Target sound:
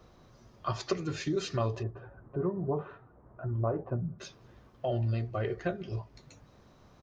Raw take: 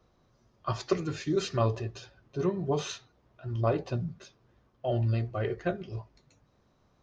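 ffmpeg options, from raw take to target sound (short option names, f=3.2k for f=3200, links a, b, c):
-filter_complex "[0:a]acompressor=threshold=-47dB:ratio=2,asplit=3[a][b][c];[a]afade=t=out:st=1.82:d=0.02[d];[b]lowpass=f=1.4k:w=0.5412,lowpass=f=1.4k:w=1.3066,afade=t=in:st=1.82:d=0.02,afade=t=out:st=4.18:d=0.02[e];[c]afade=t=in:st=4.18:d=0.02[f];[d][e][f]amix=inputs=3:normalize=0,asplit=2[g][h];[h]adelay=198.3,volume=-29dB,highshelf=f=4k:g=-4.46[i];[g][i]amix=inputs=2:normalize=0,volume=9dB"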